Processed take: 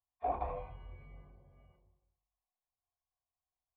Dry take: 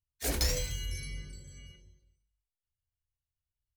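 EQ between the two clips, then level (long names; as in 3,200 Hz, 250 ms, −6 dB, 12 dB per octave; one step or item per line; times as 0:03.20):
formant resonators in series a
+15.5 dB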